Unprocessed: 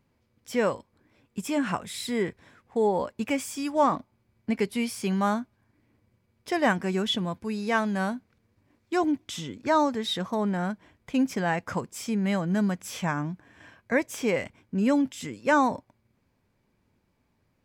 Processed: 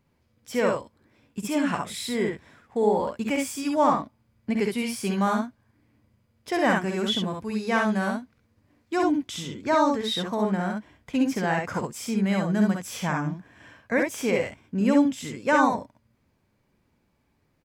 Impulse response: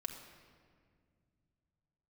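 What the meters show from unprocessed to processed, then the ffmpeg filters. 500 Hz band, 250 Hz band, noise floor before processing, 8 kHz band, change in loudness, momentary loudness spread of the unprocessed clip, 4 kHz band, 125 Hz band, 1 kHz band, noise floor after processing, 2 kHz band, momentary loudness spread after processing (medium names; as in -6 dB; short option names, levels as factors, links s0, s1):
+2.0 dB, +2.0 dB, -72 dBFS, +2.0 dB, +2.0 dB, 9 LU, +2.0 dB, +1.5 dB, +2.0 dB, -69 dBFS, +2.0 dB, 10 LU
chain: -af "aecho=1:1:52|66:0.376|0.668"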